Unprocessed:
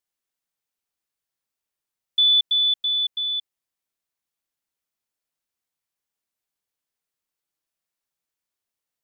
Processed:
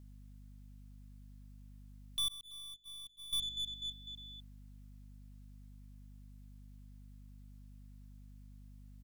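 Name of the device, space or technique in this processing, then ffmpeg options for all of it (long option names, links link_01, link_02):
valve amplifier with mains hum: -filter_complex "[0:a]aecho=1:1:251|502|753|1004:0.126|0.0667|0.0354|0.0187,aeval=exprs='(tanh(126*val(0)+0.35)-tanh(0.35))/126':channel_layout=same,aeval=exprs='val(0)+0.000794*(sin(2*PI*50*n/s)+sin(2*PI*2*50*n/s)/2+sin(2*PI*3*50*n/s)/3+sin(2*PI*4*50*n/s)/4+sin(2*PI*5*50*n/s)/5)':channel_layout=same,asettb=1/sr,asplit=3[link_01][link_02][link_03];[link_01]atrim=end=2.284[link_04];[link_02]atrim=start=2.28:end=3.33,asetpts=PTS-STARTPTS,afade=type=in:duration=0.004:curve=qsin,afade=type=out:start_time=1.046:duration=0.004:curve=qsin,agate=range=-31dB:threshold=-40dB:ratio=16:detection=peak[link_05];[link_03]atrim=start=3.326[link_06];[link_04][link_05]acrossfade=duration=0.004:curve1=hsin:curve2=qsin[link_07];[link_07][link_06]acrossfade=duration=0.004:curve1=qsin:curve2=hsin,volume=9dB"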